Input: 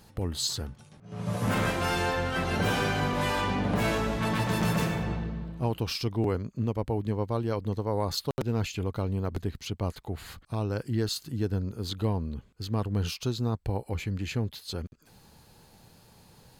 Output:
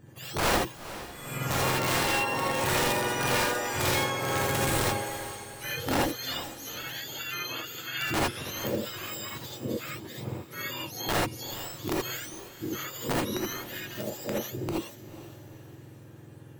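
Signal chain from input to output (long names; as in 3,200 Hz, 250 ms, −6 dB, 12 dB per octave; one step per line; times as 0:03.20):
frequency axis turned over on the octave scale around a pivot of 1,200 Hz
high-shelf EQ 3,500 Hz −10.5 dB
wrap-around overflow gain 23.5 dB
feedback delay with all-pass diffusion 454 ms, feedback 49%, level −14 dB
reverb whose tail is shaped and stops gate 100 ms rising, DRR −3.5 dB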